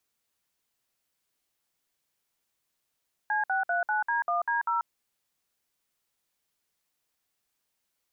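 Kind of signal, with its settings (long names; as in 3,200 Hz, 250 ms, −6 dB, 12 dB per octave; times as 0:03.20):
touch tones "C639D1D0", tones 138 ms, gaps 58 ms, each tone −27 dBFS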